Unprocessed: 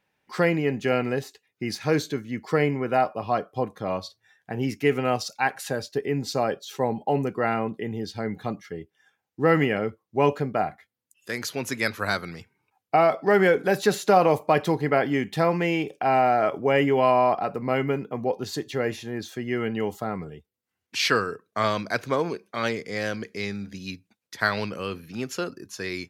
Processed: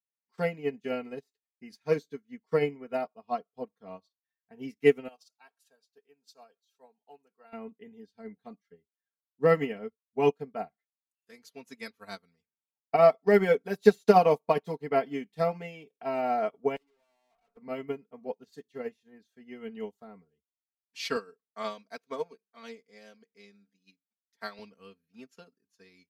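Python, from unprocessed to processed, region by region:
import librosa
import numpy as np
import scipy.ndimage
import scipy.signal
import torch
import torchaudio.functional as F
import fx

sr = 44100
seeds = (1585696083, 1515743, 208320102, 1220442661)

y = fx.chain(x, sr, fx.highpass(hz=1400.0, slope=6),
    fx.peak_eq(hz=2000.0, db=-13.0, octaves=0.26), at=(5.08, 7.53))
y = fx.chain(y, sr, fx.highpass(hz=360.0, slope=12),
    fx.tube_stage(drive_db=38.0, bias=0.6), at=(16.76, 17.57))
y = fx.chain(y, sr, fx.highpass(hz=210.0, slope=12),
    fx.notch(hz=330.0, q=5.8), at=(21.16, 24.59))
y = y + 0.86 * np.pad(y, (int(4.4 * sr / 1000.0), 0))[:len(y)]
y = fx.dynamic_eq(y, sr, hz=1600.0, q=2.1, threshold_db=-40.0, ratio=4.0, max_db=-6)
y = fx.upward_expand(y, sr, threshold_db=-37.0, expansion=2.5)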